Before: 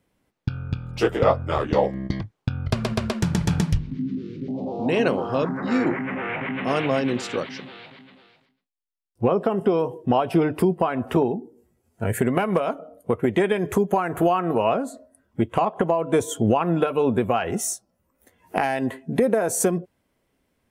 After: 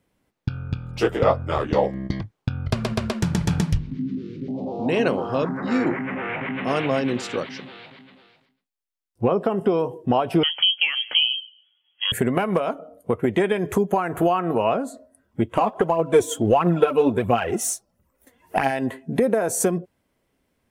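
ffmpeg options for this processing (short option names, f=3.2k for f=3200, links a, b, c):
-filter_complex "[0:a]asettb=1/sr,asplit=3[a][b][c];[a]atrim=end=10.434[d];[b]atrim=start=10.43:end=12.12,asetpts=PTS-STARTPTS,afade=t=in:d=0.004:c=qsin,afade=t=out:st=1.686:d=0.004:c=qsin,lowpass=f=2.9k:t=q:w=0.5098,lowpass=f=2.9k:t=q:w=0.6013,lowpass=f=2.9k:t=q:w=0.9,lowpass=f=2.9k:t=q:w=2.563,afreqshift=-3400[e];[c]atrim=start=12.116[f];[d][e]acrossfade=d=0.004:c1=hsin:c2=qsin[g];[g][f]acrossfade=d=0.004:c1=qsin:c2=hsin,asplit=3[h][i][j];[h]afade=t=out:st=15.56:d=0.02[k];[i]aphaser=in_gain=1:out_gain=1:delay=4.4:decay=0.55:speed=1.5:type=triangular,afade=t=in:st=15.56:d=0.02,afade=t=out:st=18.7:d=0.02[l];[j]afade=t=in:st=18.7:d=0.02[m];[k][l][m]amix=inputs=3:normalize=0"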